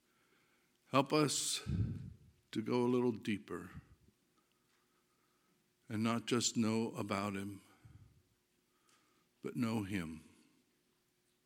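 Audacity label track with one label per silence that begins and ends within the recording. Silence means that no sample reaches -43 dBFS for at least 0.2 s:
2.090000	2.530000	silence
3.790000	5.900000	silence
7.560000	9.450000	silence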